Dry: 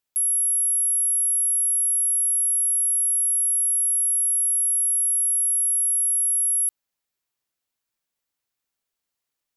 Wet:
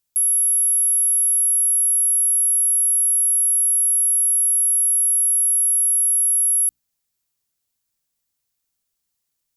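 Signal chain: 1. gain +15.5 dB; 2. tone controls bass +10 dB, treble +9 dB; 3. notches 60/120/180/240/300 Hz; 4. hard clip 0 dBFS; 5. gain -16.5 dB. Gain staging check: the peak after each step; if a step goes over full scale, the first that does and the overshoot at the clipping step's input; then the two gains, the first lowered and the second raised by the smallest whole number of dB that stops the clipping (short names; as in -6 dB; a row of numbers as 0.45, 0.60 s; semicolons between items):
-3.0, +6.0, +6.0, 0.0, -16.5 dBFS; step 2, 6.0 dB; step 1 +9.5 dB, step 5 -10.5 dB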